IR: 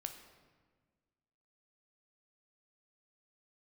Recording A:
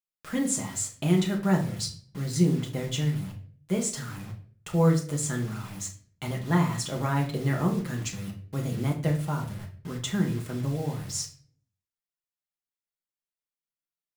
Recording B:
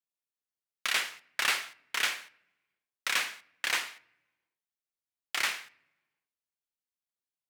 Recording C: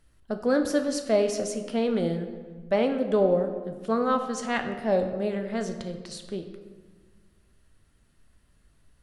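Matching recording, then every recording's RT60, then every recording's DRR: C; 0.45 s, no single decay rate, 1.5 s; -0.5 dB, 15.5 dB, 5.5 dB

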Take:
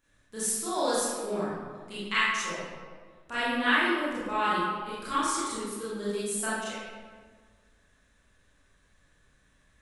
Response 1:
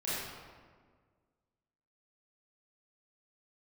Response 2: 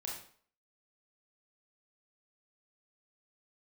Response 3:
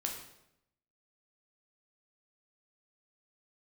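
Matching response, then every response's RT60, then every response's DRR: 1; 1.7 s, 0.50 s, 0.80 s; -11.5 dB, -3.0 dB, 0.5 dB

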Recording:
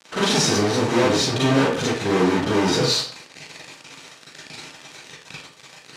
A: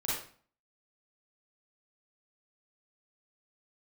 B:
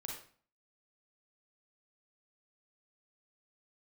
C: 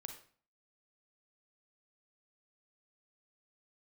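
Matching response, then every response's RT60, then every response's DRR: A; 0.45 s, 0.45 s, 0.45 s; -8.0 dB, -1.0 dB, 5.0 dB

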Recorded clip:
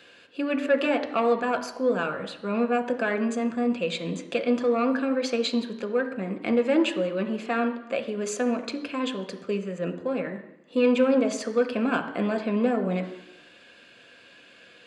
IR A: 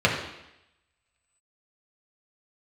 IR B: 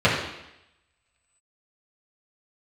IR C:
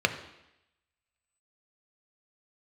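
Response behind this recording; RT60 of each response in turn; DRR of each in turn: C; 0.85 s, 0.85 s, 0.85 s; -3.0 dB, -9.0 dB, 6.5 dB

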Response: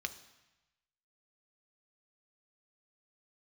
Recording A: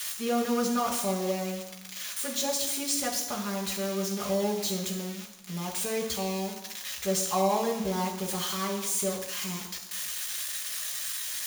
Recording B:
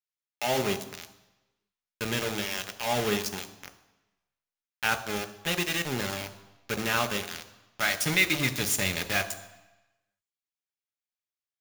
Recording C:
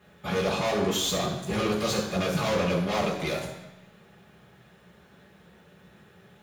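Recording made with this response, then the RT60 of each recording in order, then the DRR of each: B; 1.0 s, 1.0 s, 1.0 s; -1.0 dB, 8.0 dB, -7.0 dB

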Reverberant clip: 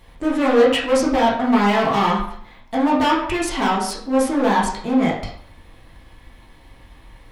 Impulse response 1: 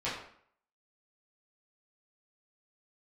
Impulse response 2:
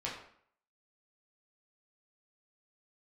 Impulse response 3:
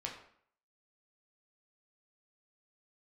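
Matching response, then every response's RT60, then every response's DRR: 2; 0.60 s, 0.60 s, 0.60 s; -10.5 dB, -5.5 dB, -1.0 dB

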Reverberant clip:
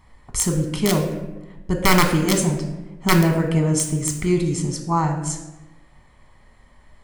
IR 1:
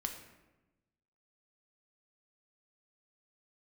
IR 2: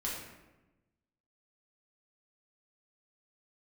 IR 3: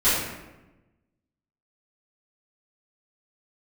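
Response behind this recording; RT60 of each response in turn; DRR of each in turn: 1; 1.1 s, 1.1 s, 1.1 s; 3.5 dB, -6.0 dB, -16.0 dB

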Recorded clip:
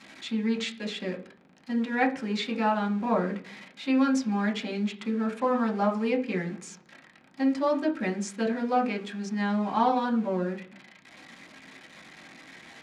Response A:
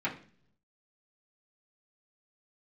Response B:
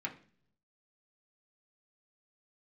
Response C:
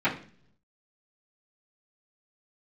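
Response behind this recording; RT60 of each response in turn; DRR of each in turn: B; no single decay rate, no single decay rate, 0.50 s; -8.5 dB, -1.5 dB, -14.5 dB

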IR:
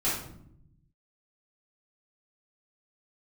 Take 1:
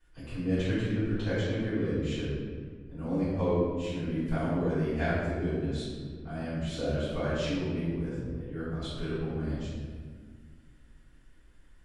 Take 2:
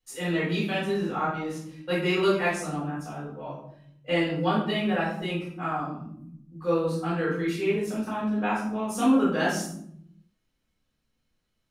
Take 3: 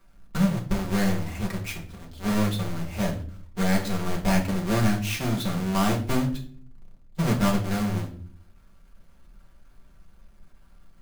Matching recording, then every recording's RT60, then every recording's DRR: 2; 1.7 s, 0.75 s, no single decay rate; -14.5 dB, -10.5 dB, -1.5 dB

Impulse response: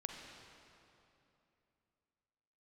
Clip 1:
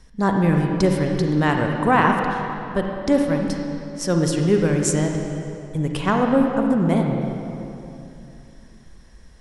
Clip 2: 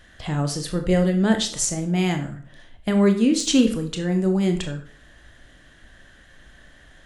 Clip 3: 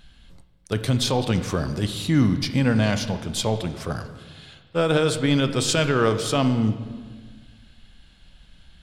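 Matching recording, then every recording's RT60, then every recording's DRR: 1; 2.9 s, 0.50 s, 1.6 s; 2.0 dB, 5.5 dB, 9.0 dB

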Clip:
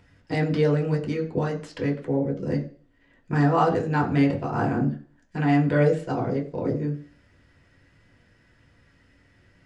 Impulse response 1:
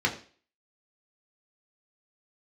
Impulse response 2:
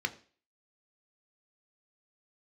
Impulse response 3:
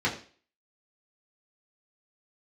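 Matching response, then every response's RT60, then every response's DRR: 1; 0.40 s, 0.40 s, 0.40 s; -1.0 dB, 7.0 dB, -6.0 dB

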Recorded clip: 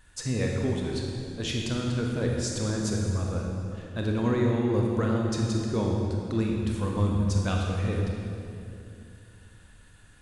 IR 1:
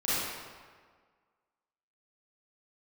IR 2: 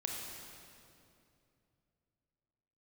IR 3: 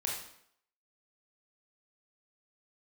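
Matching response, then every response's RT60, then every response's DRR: 2; 1.7 s, 2.6 s, 0.70 s; -12.0 dB, -0.5 dB, -2.5 dB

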